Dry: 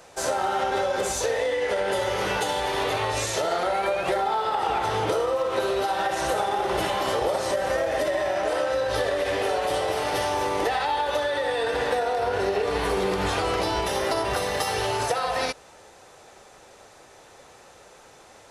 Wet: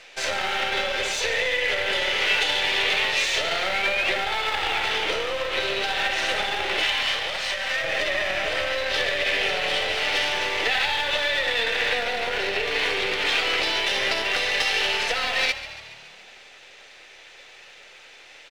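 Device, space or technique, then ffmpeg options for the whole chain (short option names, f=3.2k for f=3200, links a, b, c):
crystal radio: -filter_complex "[0:a]highpass=200,asettb=1/sr,asplit=3[a][b][c];[a]atrim=end=6.834[d];[b]atrim=start=6.83:end=7.84,asetpts=PTS-STARTPTS,afade=t=in:d=0.004:c=qsin,afade=t=out:st=1.006:d=0.004:c=qsin,highpass=780[e];[c]atrim=start=7.836[f];[d][e]acrossfade=d=0.004:c1=hsin:c2=qsin[g];[g][f]acrossfade=d=0.004:c1=qsin:c2=hsin,highpass=340,lowpass=3.3k,aeval=exprs='if(lt(val(0),0),0.447*val(0),val(0))':c=same,highshelf=f=1.6k:t=q:w=1.5:g=13,asplit=8[h][i][j][k][l][m][n][o];[i]adelay=140,afreqshift=37,volume=-14dB[p];[j]adelay=280,afreqshift=74,volume=-18.3dB[q];[k]adelay=420,afreqshift=111,volume=-22.6dB[r];[l]adelay=560,afreqshift=148,volume=-26.9dB[s];[m]adelay=700,afreqshift=185,volume=-31.2dB[t];[n]adelay=840,afreqshift=222,volume=-35.5dB[u];[o]adelay=980,afreqshift=259,volume=-39.8dB[v];[h][p][q][r][s][t][u][v]amix=inputs=8:normalize=0"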